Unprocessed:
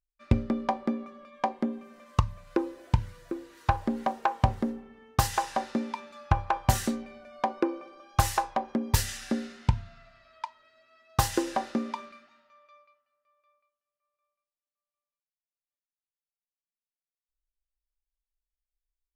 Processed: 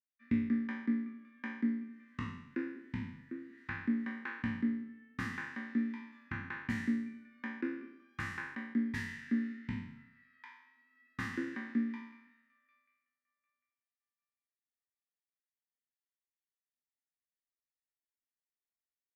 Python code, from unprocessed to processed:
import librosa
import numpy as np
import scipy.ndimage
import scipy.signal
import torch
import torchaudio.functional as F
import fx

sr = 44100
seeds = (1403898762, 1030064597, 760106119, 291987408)

y = fx.spec_trails(x, sr, decay_s=0.76)
y = fx.double_bandpass(y, sr, hz=680.0, octaves=2.9)